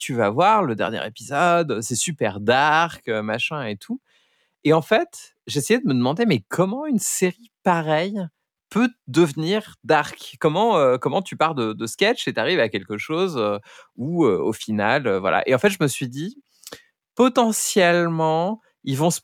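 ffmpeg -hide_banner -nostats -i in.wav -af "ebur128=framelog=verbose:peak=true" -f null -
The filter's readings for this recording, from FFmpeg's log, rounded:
Integrated loudness:
  I:         -20.9 LUFS
  Threshold: -31.3 LUFS
Loudness range:
  LRA:         1.9 LU
  Threshold: -41.6 LUFS
  LRA low:   -22.5 LUFS
  LRA high:  -20.5 LUFS
True peak:
  Peak:       -5.4 dBFS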